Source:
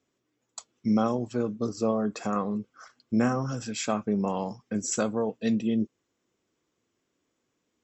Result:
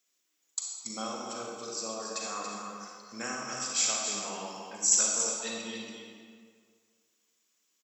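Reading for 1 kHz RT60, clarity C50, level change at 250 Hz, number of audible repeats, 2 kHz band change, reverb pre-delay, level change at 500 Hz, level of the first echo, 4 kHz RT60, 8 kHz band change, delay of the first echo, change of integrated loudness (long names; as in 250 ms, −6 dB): 2.0 s, −1.5 dB, −17.0 dB, 1, +0.5 dB, 35 ms, −10.5 dB, −7.0 dB, 1.4 s, can't be measured, 281 ms, −2.0 dB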